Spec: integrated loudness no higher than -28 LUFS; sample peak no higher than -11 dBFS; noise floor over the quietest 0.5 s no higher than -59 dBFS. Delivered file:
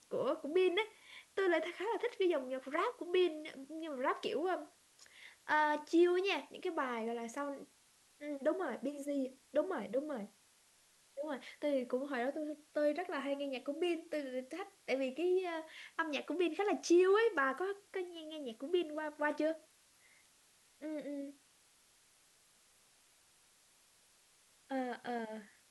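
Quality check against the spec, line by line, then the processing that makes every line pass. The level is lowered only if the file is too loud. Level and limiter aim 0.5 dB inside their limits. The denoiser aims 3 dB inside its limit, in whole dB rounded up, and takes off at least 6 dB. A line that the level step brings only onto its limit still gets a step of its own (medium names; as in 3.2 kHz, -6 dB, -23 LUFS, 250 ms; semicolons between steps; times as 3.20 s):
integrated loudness -37.0 LUFS: pass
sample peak -20.5 dBFS: pass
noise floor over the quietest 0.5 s -69 dBFS: pass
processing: none needed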